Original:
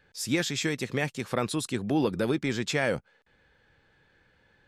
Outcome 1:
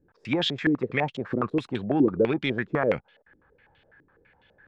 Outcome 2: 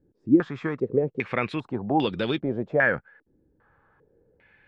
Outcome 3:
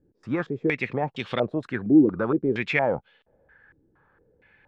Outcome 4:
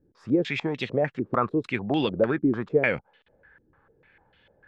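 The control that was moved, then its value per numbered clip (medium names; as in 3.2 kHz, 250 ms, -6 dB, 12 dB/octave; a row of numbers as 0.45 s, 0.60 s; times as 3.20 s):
step-sequenced low-pass, rate: 12 Hz, 2.5 Hz, 4.3 Hz, 6.7 Hz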